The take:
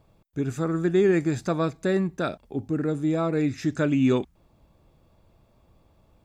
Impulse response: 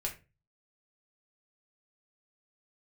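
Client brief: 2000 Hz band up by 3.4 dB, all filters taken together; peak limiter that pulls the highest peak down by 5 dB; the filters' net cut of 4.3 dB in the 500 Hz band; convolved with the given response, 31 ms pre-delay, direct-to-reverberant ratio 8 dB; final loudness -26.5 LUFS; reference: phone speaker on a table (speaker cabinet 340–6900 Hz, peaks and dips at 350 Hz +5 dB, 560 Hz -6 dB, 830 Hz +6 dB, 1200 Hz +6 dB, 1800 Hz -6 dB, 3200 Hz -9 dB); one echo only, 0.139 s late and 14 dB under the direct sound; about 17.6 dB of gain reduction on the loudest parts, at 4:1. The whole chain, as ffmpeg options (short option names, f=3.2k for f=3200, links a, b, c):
-filter_complex "[0:a]equalizer=f=500:t=o:g=-8,equalizer=f=2k:t=o:g=8.5,acompressor=threshold=-41dB:ratio=4,alimiter=level_in=10dB:limit=-24dB:level=0:latency=1,volume=-10dB,aecho=1:1:139:0.2,asplit=2[a][b];[1:a]atrim=start_sample=2205,adelay=31[c];[b][c]afir=irnorm=-1:irlink=0,volume=-10dB[d];[a][d]amix=inputs=2:normalize=0,highpass=f=340:w=0.5412,highpass=f=340:w=1.3066,equalizer=f=350:t=q:w=4:g=5,equalizer=f=560:t=q:w=4:g=-6,equalizer=f=830:t=q:w=4:g=6,equalizer=f=1.2k:t=q:w=4:g=6,equalizer=f=1.8k:t=q:w=4:g=-6,equalizer=f=3.2k:t=q:w=4:g=-9,lowpass=f=6.9k:w=0.5412,lowpass=f=6.9k:w=1.3066,volume=19dB"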